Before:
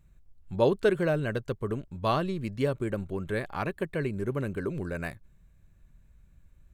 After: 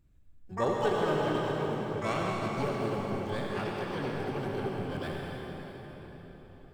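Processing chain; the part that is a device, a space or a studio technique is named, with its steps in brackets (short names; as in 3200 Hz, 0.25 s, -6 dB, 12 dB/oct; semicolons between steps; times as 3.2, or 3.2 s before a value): 1.19–1.92 HPF 120 Hz 12 dB/oct; shimmer-style reverb (harmoniser +12 st -5 dB; reverb RT60 4.6 s, pre-delay 62 ms, DRR -3 dB); gain -8 dB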